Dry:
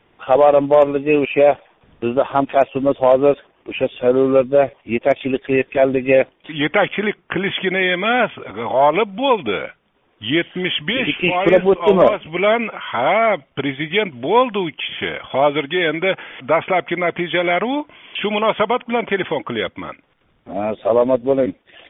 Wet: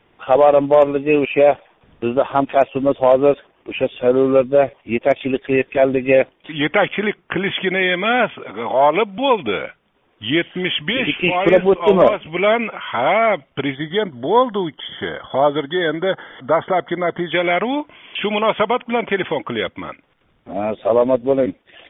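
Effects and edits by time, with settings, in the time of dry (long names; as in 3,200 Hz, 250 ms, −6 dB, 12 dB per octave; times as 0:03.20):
0:08.34–0:09.18: high-pass filter 140 Hz
0:13.75–0:17.32: Butterworth band-reject 2,500 Hz, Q 1.9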